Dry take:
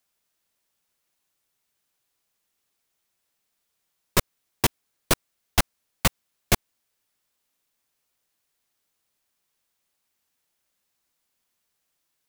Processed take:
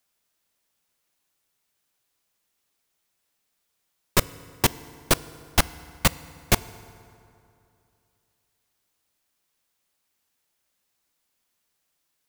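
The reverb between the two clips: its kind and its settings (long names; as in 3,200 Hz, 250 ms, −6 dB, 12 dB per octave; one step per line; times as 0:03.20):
feedback delay network reverb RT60 2.7 s, high-frequency decay 0.6×, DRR 17 dB
level +1 dB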